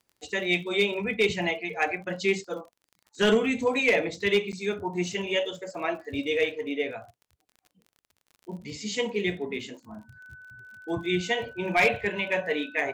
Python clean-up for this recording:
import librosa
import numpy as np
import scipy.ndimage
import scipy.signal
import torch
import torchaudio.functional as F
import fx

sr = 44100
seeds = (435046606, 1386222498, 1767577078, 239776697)

y = fx.fix_declip(x, sr, threshold_db=-14.5)
y = fx.fix_declick_ar(y, sr, threshold=6.5)
y = fx.notch(y, sr, hz=1500.0, q=30.0)
y = fx.fix_interpolate(y, sr, at_s=(4.52,), length_ms=8.4)